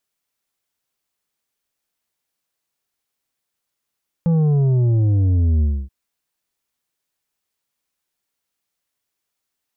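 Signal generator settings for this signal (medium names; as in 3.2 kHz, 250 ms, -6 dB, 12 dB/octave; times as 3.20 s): sub drop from 170 Hz, over 1.63 s, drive 7 dB, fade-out 0.27 s, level -14 dB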